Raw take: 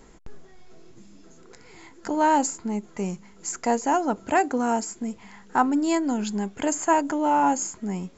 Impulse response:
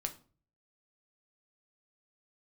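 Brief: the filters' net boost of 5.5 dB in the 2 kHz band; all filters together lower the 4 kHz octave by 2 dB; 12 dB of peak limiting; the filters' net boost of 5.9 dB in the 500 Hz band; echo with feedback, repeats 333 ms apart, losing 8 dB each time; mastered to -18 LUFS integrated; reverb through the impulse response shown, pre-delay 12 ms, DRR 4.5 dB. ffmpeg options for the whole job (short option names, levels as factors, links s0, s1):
-filter_complex "[0:a]equalizer=f=500:t=o:g=7.5,equalizer=f=2000:t=o:g=8,equalizer=f=4000:t=o:g=-6.5,alimiter=limit=0.158:level=0:latency=1,aecho=1:1:333|666|999|1332|1665:0.398|0.159|0.0637|0.0255|0.0102,asplit=2[s0][s1];[1:a]atrim=start_sample=2205,adelay=12[s2];[s1][s2]afir=irnorm=-1:irlink=0,volume=0.596[s3];[s0][s3]amix=inputs=2:normalize=0,volume=2.11"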